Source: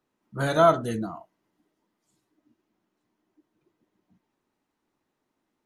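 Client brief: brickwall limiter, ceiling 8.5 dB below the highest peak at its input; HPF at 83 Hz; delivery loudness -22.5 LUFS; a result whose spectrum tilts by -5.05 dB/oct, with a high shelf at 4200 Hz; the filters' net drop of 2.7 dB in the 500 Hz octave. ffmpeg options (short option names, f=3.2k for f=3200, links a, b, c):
-af "highpass=83,equalizer=f=500:t=o:g=-4.5,highshelf=f=4.2k:g=6,volume=7.5dB,alimiter=limit=-10dB:level=0:latency=1"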